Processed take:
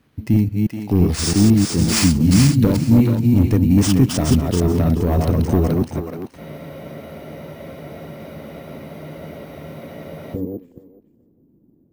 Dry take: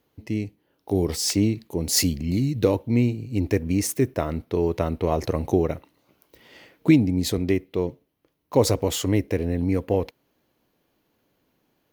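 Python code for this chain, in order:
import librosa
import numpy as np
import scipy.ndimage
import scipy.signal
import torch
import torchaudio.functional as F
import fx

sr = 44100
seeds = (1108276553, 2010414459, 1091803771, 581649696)

p1 = fx.reverse_delay(x, sr, ms=167, wet_db=-3.5)
p2 = fx.dynamic_eq(p1, sr, hz=2200.0, q=0.8, threshold_db=-42.0, ratio=4.0, max_db=-4)
p3 = fx.rider(p2, sr, range_db=4, speed_s=0.5)
p4 = p2 + (p3 * 10.0 ** (-0.5 / 20.0))
p5 = 10.0 ** (-10.0 / 20.0) * np.tanh(p4 / 10.0 ** (-10.0 / 20.0))
p6 = fx.low_shelf_res(p5, sr, hz=300.0, db=8.0, q=1.5)
p7 = fx.filter_sweep_lowpass(p6, sr, from_hz=14000.0, to_hz=360.0, start_s=9.06, end_s=9.79, q=2.4)
p8 = p7 + fx.echo_thinned(p7, sr, ms=429, feedback_pct=17, hz=510.0, wet_db=-4, dry=0)
p9 = np.repeat(p8[::3], 3)[:len(p8)]
p10 = fx.spec_freeze(p9, sr, seeds[0], at_s=6.4, hold_s=3.95)
y = p10 * 10.0 ** (-3.0 / 20.0)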